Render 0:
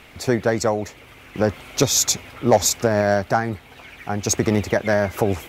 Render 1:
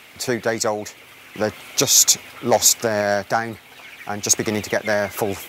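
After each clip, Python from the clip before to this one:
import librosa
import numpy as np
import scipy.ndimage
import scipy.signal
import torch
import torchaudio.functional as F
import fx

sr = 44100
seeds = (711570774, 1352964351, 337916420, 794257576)

y = scipy.signal.sosfilt(scipy.signal.butter(2, 90.0, 'highpass', fs=sr, output='sos'), x)
y = fx.tilt_eq(y, sr, slope=2.0)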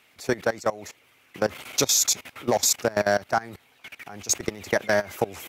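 y = fx.level_steps(x, sr, step_db=20)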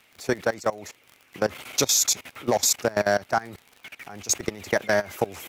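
y = fx.dmg_crackle(x, sr, seeds[0], per_s=41.0, level_db=-35.0)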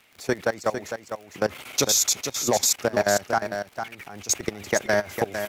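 y = x + 10.0 ** (-8.0 / 20.0) * np.pad(x, (int(453 * sr / 1000.0), 0))[:len(x)]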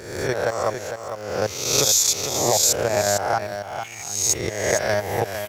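y = fx.spec_swells(x, sr, rise_s=0.92)
y = fx.graphic_eq_15(y, sr, hz=(100, 250, 1600), db=(6, -9, -4))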